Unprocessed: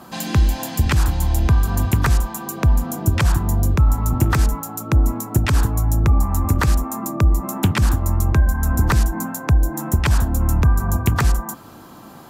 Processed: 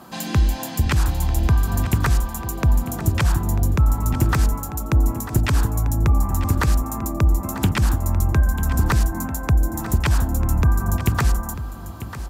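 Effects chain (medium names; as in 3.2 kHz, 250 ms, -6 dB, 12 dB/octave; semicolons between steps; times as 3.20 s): delay 944 ms -13 dB; trim -2 dB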